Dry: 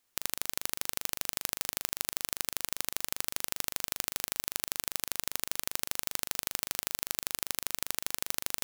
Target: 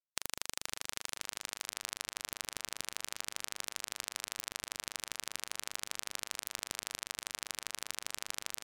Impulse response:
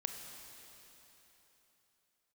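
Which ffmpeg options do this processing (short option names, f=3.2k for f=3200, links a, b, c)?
-filter_complex "[0:a]lowpass=9.5k,afftfilt=real='re*gte(hypot(re,im),0.002)':imag='im*gte(hypot(re,im),0.002)':win_size=1024:overlap=0.75,lowshelf=f=390:g=-11.5,acompressor=threshold=-40dB:ratio=10,asplit=2[a][b];[b]adelay=509,lowpass=f=1.7k:p=1,volume=-10dB,asplit=2[c][d];[d]adelay=509,lowpass=f=1.7k:p=1,volume=0.4,asplit=2[e][f];[f]adelay=509,lowpass=f=1.7k:p=1,volume=0.4,asplit=2[g][h];[h]adelay=509,lowpass=f=1.7k:p=1,volume=0.4[i];[c][e][g][i]amix=inputs=4:normalize=0[j];[a][j]amix=inputs=2:normalize=0,aeval=exprs='val(0)*sgn(sin(2*PI*230*n/s))':c=same,volume=7.5dB"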